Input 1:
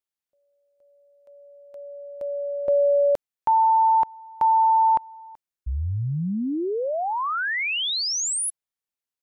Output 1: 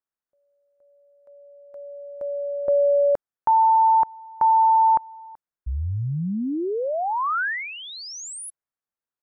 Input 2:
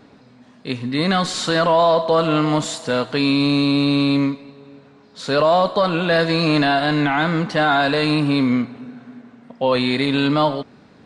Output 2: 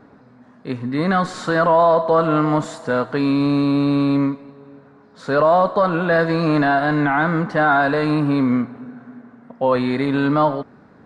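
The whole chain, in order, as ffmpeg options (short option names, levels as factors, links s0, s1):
-af "highshelf=f=2100:t=q:w=1.5:g=-9.5"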